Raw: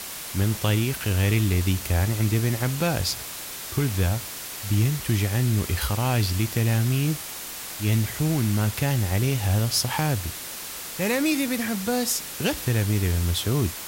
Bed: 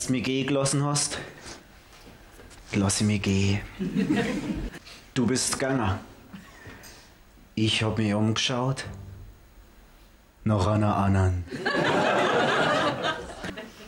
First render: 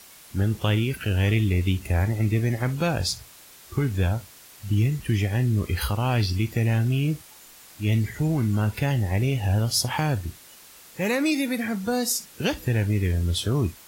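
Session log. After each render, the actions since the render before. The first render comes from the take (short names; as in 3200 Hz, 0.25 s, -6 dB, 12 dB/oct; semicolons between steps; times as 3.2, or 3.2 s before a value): noise print and reduce 13 dB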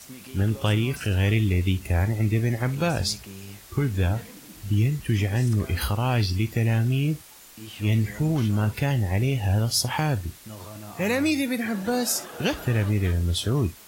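add bed -17.5 dB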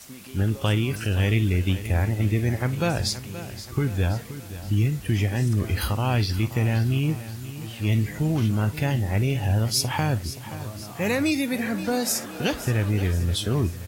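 feedback echo 0.525 s, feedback 50%, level -13.5 dB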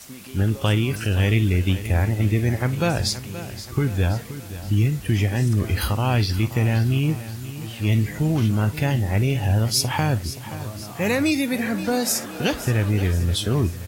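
gain +2.5 dB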